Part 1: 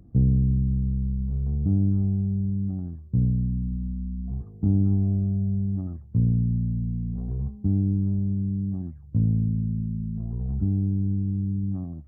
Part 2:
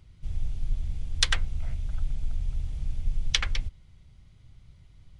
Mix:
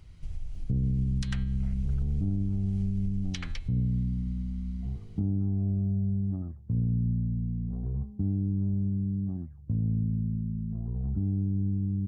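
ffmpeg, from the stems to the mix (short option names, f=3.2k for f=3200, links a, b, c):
-filter_complex "[0:a]adelay=550,volume=-3dB[a];[1:a]bandreject=f=3.5k:w=13,bandreject=f=113.9:t=h:w=4,bandreject=f=227.8:t=h:w=4,bandreject=f=341.7:t=h:w=4,bandreject=f=455.6:t=h:w=4,bandreject=f=569.5:t=h:w=4,bandreject=f=683.4:t=h:w=4,bandreject=f=797.3:t=h:w=4,bandreject=f=911.2:t=h:w=4,bandreject=f=1.0251k:t=h:w=4,bandreject=f=1.139k:t=h:w=4,bandreject=f=1.2529k:t=h:w=4,bandreject=f=1.3668k:t=h:w=4,bandreject=f=1.4807k:t=h:w=4,bandreject=f=1.5946k:t=h:w=4,bandreject=f=1.7085k:t=h:w=4,bandreject=f=1.8224k:t=h:w=4,bandreject=f=1.9363k:t=h:w=4,bandreject=f=2.0502k:t=h:w=4,bandreject=f=2.1641k:t=h:w=4,bandreject=f=2.278k:t=h:w=4,bandreject=f=2.3919k:t=h:w=4,bandreject=f=2.5058k:t=h:w=4,bandreject=f=2.6197k:t=h:w=4,bandreject=f=2.7336k:t=h:w=4,bandreject=f=2.8475k:t=h:w=4,bandreject=f=2.9614k:t=h:w=4,bandreject=f=3.0753k:t=h:w=4,bandreject=f=3.1892k:t=h:w=4,bandreject=f=3.3031k:t=h:w=4,bandreject=f=3.417k:t=h:w=4,bandreject=f=3.5309k:t=h:w=4,bandreject=f=3.6448k:t=h:w=4,bandreject=f=3.7587k:t=h:w=4,bandreject=f=3.8726k:t=h:w=4,bandreject=f=3.9865k:t=h:w=4,bandreject=f=4.1004k:t=h:w=4,bandreject=f=4.2143k:t=h:w=4,bandreject=f=4.3282k:t=h:w=4,bandreject=f=4.4421k:t=h:w=4,acompressor=threshold=-37dB:ratio=3,volume=3dB[b];[a][b]amix=inputs=2:normalize=0,alimiter=limit=-20.5dB:level=0:latency=1:release=164"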